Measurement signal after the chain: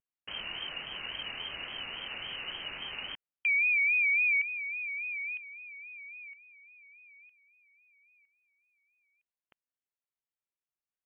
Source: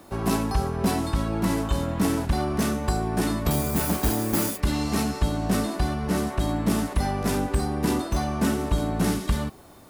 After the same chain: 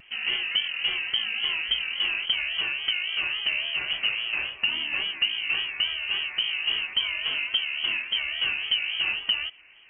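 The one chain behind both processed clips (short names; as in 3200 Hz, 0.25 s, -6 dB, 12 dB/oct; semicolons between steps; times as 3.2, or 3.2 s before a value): inverted band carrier 3000 Hz; vibrato 3.6 Hz 93 cents; gain -4 dB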